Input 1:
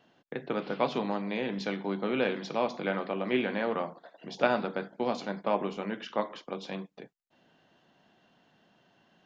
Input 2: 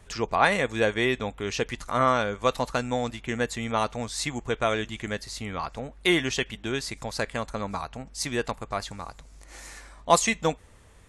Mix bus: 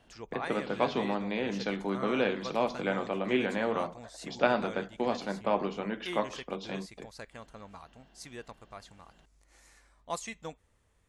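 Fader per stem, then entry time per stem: 0.0 dB, -16.5 dB; 0.00 s, 0.00 s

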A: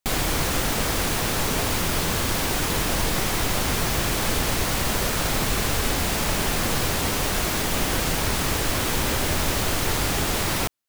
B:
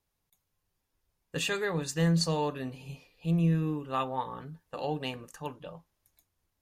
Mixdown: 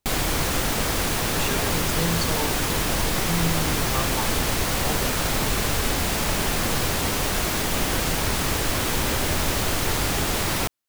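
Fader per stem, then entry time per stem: 0.0 dB, -0.5 dB; 0.00 s, 0.00 s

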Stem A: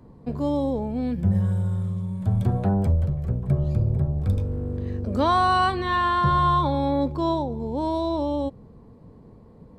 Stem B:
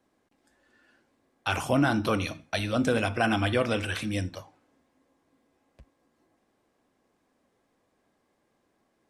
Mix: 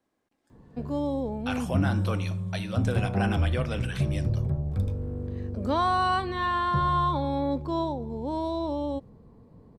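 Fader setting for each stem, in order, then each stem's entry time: -4.5 dB, -6.0 dB; 0.50 s, 0.00 s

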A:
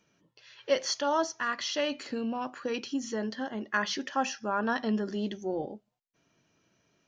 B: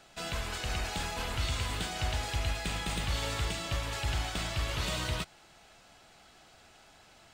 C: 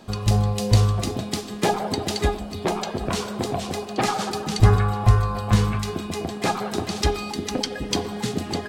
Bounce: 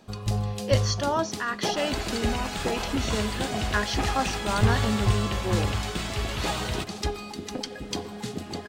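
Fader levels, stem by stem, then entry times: +1.5 dB, +2.5 dB, -7.5 dB; 0.00 s, 1.60 s, 0.00 s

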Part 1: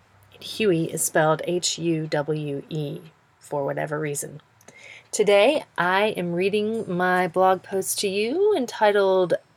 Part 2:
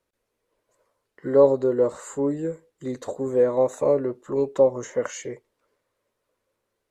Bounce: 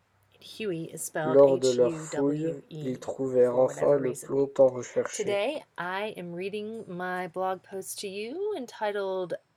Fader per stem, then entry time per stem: -11.5 dB, -2.5 dB; 0.00 s, 0.00 s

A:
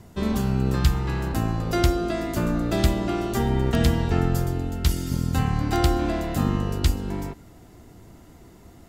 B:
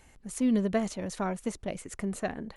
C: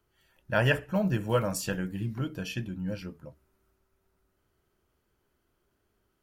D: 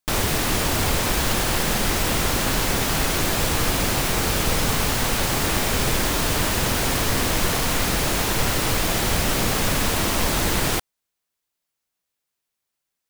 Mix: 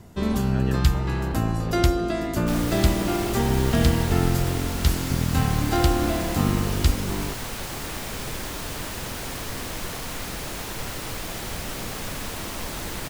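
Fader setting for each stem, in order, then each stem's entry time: +0.5 dB, -16.5 dB, -14.0 dB, -10.5 dB; 0.00 s, 0.00 s, 0.00 s, 2.40 s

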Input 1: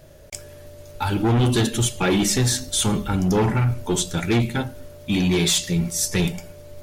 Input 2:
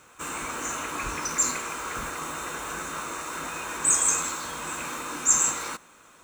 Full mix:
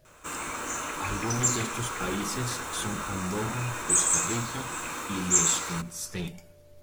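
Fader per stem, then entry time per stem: -13.0 dB, -1.5 dB; 0.00 s, 0.05 s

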